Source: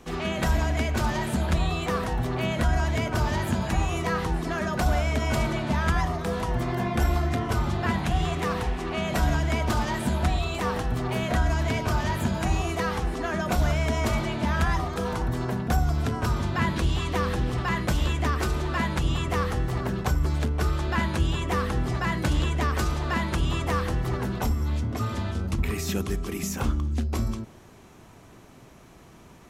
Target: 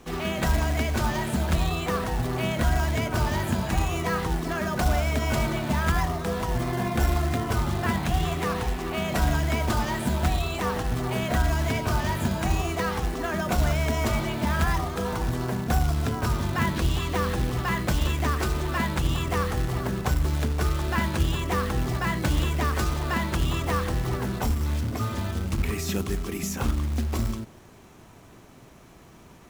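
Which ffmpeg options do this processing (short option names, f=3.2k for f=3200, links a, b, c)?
-af "acrusher=bits=4:mode=log:mix=0:aa=0.000001"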